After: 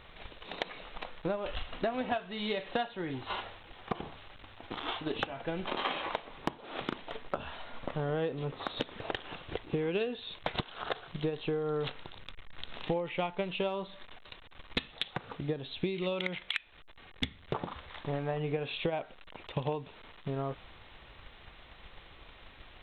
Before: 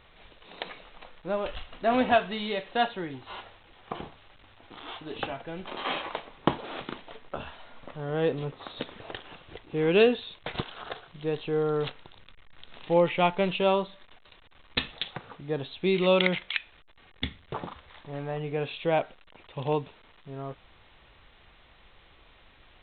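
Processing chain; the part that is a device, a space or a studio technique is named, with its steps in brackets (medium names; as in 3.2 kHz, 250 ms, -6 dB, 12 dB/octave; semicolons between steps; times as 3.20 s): drum-bus smash (transient shaper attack +8 dB, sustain +2 dB; compression 10:1, threshold -32 dBFS, peak gain reduction 22.5 dB; saturation -15 dBFS, distortion -27 dB); 15.25–16.12 s: peaking EQ 980 Hz -3.5 dB 1.6 oct; trim +2.5 dB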